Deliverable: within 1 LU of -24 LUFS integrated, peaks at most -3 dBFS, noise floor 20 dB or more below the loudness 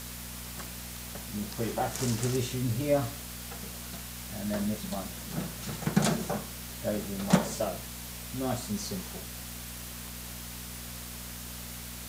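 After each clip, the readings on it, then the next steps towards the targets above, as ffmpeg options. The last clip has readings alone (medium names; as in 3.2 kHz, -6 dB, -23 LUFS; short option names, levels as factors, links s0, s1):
hum 60 Hz; highest harmonic 240 Hz; hum level -42 dBFS; noise floor -42 dBFS; noise floor target -54 dBFS; loudness -33.5 LUFS; peak level -9.0 dBFS; loudness target -24.0 LUFS
-> -af "bandreject=f=60:t=h:w=4,bandreject=f=120:t=h:w=4,bandreject=f=180:t=h:w=4,bandreject=f=240:t=h:w=4"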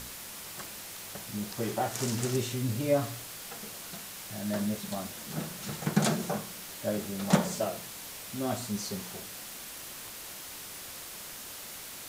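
hum not found; noise floor -44 dBFS; noise floor target -54 dBFS
-> -af "afftdn=nr=10:nf=-44"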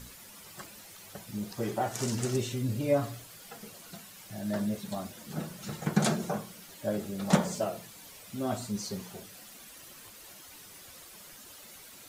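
noise floor -51 dBFS; noise floor target -53 dBFS
-> -af "afftdn=nr=6:nf=-51"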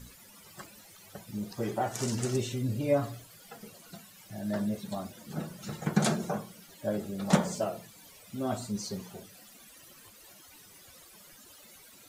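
noise floor -55 dBFS; loudness -33.0 LUFS; peak level -9.5 dBFS; loudness target -24.0 LUFS
-> -af "volume=2.82,alimiter=limit=0.708:level=0:latency=1"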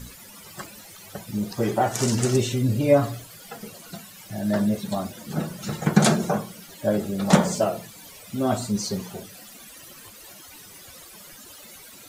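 loudness -24.0 LUFS; peak level -3.0 dBFS; noise floor -46 dBFS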